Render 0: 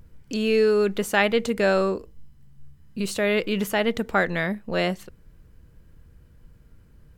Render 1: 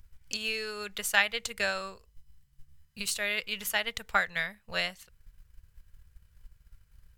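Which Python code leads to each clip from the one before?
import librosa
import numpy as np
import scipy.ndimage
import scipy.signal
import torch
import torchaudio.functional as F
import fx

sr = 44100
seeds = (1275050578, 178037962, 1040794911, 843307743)

y = fx.tone_stack(x, sr, knobs='10-0-10')
y = fx.transient(y, sr, attack_db=6, sustain_db=-4)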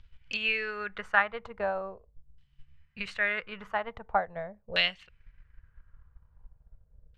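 y = fx.filter_lfo_lowpass(x, sr, shape='saw_down', hz=0.42, low_hz=490.0, high_hz=3400.0, q=2.6)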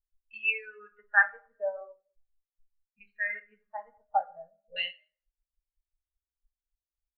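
y = fx.rev_plate(x, sr, seeds[0], rt60_s=1.1, hf_ratio=0.8, predelay_ms=0, drr_db=3.0)
y = fx.spectral_expand(y, sr, expansion=2.5)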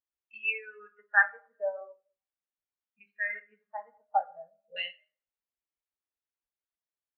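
y = fx.bandpass_edges(x, sr, low_hz=200.0, high_hz=2800.0)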